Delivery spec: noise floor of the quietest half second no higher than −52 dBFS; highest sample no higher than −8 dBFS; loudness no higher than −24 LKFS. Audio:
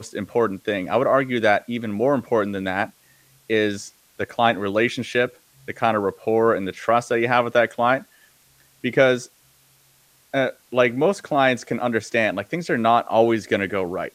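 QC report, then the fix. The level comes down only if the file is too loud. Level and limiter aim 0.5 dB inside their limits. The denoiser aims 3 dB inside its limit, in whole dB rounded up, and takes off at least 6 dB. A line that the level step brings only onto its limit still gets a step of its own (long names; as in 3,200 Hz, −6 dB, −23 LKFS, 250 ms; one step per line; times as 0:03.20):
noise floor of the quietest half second −58 dBFS: in spec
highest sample −3.5 dBFS: out of spec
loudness −21.5 LKFS: out of spec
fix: level −3 dB
brickwall limiter −8.5 dBFS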